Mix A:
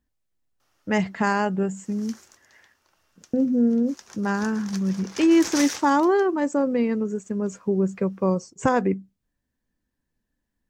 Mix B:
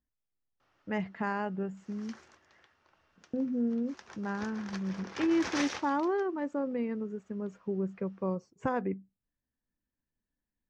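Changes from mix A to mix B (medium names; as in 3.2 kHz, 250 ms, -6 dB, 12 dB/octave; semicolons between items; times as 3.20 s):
speech -10.5 dB; master: add low-pass 3 kHz 12 dB/octave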